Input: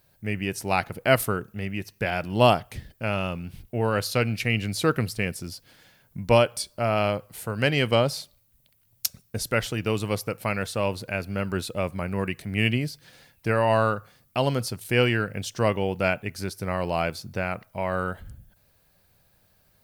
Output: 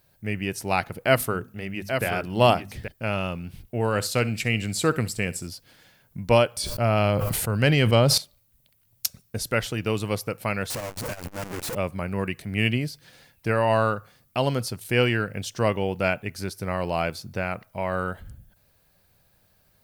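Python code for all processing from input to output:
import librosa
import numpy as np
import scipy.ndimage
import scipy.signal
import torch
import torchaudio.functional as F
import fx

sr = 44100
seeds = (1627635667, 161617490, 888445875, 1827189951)

y = fx.chain(x, sr, fx.hum_notches(base_hz=50, count=5),
    fx.echo_single(ms=829, db=-7.0), at=(1.06, 2.88))
y = fx.chain(y, sr, fx.peak_eq(hz=7700.0, db=12.5, octaves=0.23),
    fx.room_flutter(wall_m=11.2, rt60_s=0.21), at=(3.8, 5.47))
y = fx.chain(y, sr, fx.low_shelf(hz=140.0, db=9.5),
    fx.sustainer(db_per_s=22.0), at=(6.57, 8.18))
y = fx.chain(y, sr, fx.clip_1bit(),
    fx.peak_eq(hz=3700.0, db=-6.5, octaves=0.66),
    fx.transformer_sat(knee_hz=130.0), at=(10.7, 11.75))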